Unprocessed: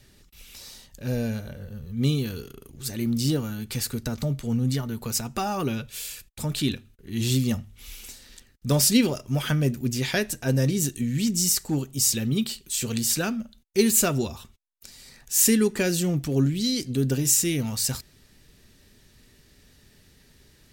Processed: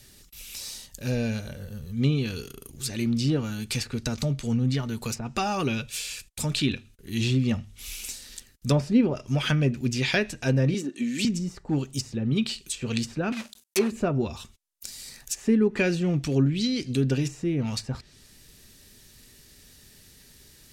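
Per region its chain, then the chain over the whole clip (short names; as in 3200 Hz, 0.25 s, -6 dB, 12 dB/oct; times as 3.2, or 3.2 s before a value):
10.74–11.25 HPF 210 Hz 24 dB/oct + comb 3.4 ms, depth 37%
13.32–13.92 block floating point 3-bit + HPF 350 Hz 6 dB/oct + high shelf 5800 Hz +9 dB
whole clip: high shelf 4200 Hz +11 dB; treble ducked by the level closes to 1000 Hz, closed at -15 dBFS; dynamic EQ 2500 Hz, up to +6 dB, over -56 dBFS, Q 6.5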